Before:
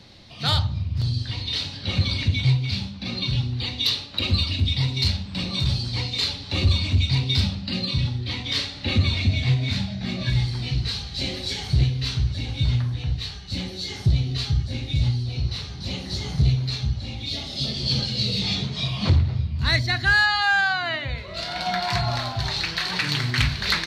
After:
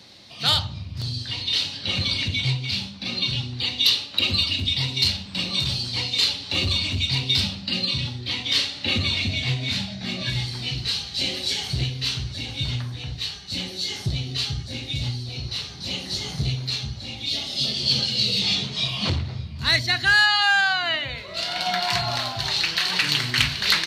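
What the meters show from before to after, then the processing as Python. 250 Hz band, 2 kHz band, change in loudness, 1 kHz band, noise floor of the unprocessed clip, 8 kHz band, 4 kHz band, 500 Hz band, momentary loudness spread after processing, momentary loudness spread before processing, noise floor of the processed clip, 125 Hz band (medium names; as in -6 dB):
-3.5 dB, +1.5 dB, +1.0 dB, 0.0 dB, -36 dBFS, +5.5 dB, +4.5 dB, -0.5 dB, 10 LU, 8 LU, -38 dBFS, -6.5 dB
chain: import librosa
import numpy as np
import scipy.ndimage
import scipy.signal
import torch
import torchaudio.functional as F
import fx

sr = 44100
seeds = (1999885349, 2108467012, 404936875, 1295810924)

y = fx.dynamic_eq(x, sr, hz=2900.0, q=4.7, threshold_db=-46.0, ratio=4.0, max_db=6)
y = fx.highpass(y, sr, hz=210.0, slope=6)
y = fx.high_shelf(y, sr, hz=5200.0, db=8.5)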